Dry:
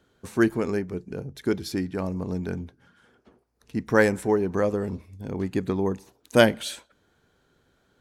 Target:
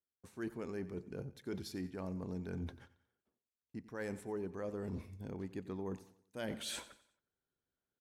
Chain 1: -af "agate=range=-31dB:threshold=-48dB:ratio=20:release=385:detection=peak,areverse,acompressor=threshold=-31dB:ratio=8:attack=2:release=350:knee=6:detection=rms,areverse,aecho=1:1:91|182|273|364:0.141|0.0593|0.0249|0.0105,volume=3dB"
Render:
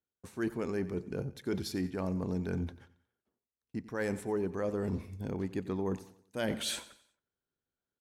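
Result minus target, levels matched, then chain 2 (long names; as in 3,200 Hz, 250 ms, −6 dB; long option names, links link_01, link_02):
downward compressor: peak gain reduction −8 dB
-af "agate=range=-31dB:threshold=-48dB:ratio=20:release=385:detection=peak,areverse,acompressor=threshold=-40dB:ratio=8:attack=2:release=350:knee=6:detection=rms,areverse,aecho=1:1:91|182|273|364:0.141|0.0593|0.0249|0.0105,volume=3dB"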